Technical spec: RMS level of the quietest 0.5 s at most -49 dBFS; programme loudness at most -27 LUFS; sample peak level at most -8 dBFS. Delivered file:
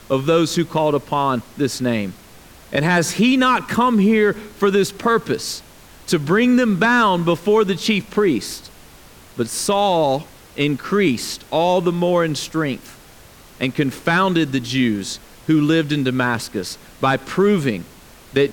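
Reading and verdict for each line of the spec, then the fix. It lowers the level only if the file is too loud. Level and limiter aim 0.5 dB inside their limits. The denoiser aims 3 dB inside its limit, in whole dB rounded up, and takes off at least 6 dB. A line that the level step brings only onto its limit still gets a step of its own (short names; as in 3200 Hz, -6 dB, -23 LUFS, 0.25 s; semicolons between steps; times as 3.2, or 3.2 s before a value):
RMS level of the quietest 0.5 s -44 dBFS: fail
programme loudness -18.5 LUFS: fail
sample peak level -3.5 dBFS: fail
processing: gain -9 dB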